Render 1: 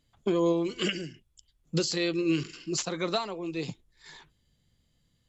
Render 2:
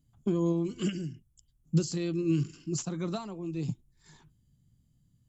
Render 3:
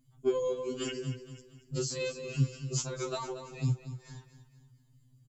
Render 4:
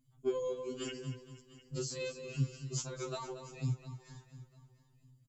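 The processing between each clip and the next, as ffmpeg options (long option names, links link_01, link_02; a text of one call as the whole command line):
ffmpeg -i in.wav -af "equalizer=frequency=125:width_type=o:width=1:gain=8,equalizer=frequency=250:width_type=o:width=1:gain=3,equalizer=frequency=500:width_type=o:width=1:gain=-10,equalizer=frequency=1000:width_type=o:width=1:gain=-4,equalizer=frequency=2000:width_type=o:width=1:gain=-11,equalizer=frequency=4000:width_type=o:width=1:gain=-11" out.wav
ffmpeg -i in.wav -af "aecho=1:1:233|466|699|932:0.251|0.105|0.0443|0.0186,afftfilt=real='re*2.45*eq(mod(b,6),0)':imag='im*2.45*eq(mod(b,6),0)':win_size=2048:overlap=0.75,volume=5dB" out.wav
ffmpeg -i in.wav -af "aecho=1:1:700|1400:0.106|0.0244,volume=-5dB" out.wav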